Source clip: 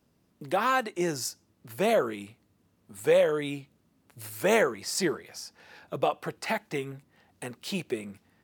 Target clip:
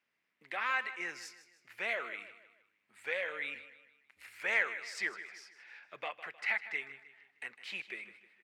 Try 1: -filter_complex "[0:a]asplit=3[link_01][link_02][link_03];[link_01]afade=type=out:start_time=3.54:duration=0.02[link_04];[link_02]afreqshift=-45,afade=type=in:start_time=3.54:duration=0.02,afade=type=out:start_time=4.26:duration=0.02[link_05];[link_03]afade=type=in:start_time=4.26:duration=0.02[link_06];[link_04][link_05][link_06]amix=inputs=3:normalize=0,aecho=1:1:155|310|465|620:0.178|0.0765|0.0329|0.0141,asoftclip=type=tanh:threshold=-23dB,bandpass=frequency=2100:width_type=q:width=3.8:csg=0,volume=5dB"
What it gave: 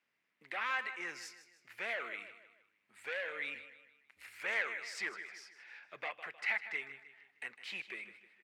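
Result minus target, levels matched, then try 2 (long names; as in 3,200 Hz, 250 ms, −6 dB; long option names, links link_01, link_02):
soft clipping: distortion +10 dB
-filter_complex "[0:a]asplit=3[link_01][link_02][link_03];[link_01]afade=type=out:start_time=3.54:duration=0.02[link_04];[link_02]afreqshift=-45,afade=type=in:start_time=3.54:duration=0.02,afade=type=out:start_time=4.26:duration=0.02[link_05];[link_03]afade=type=in:start_time=4.26:duration=0.02[link_06];[link_04][link_05][link_06]amix=inputs=3:normalize=0,aecho=1:1:155|310|465|620:0.178|0.0765|0.0329|0.0141,asoftclip=type=tanh:threshold=-14.5dB,bandpass=frequency=2100:width_type=q:width=3.8:csg=0,volume=5dB"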